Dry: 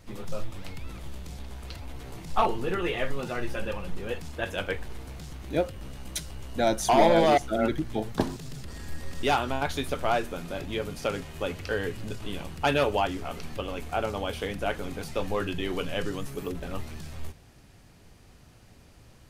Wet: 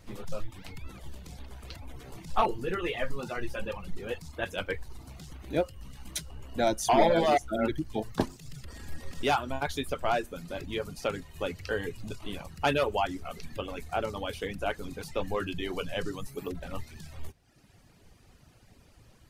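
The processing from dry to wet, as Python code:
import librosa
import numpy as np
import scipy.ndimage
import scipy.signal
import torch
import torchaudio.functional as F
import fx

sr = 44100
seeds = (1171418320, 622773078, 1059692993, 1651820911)

y = fx.dereverb_blind(x, sr, rt60_s=0.96)
y = F.gain(torch.from_numpy(y), -1.5).numpy()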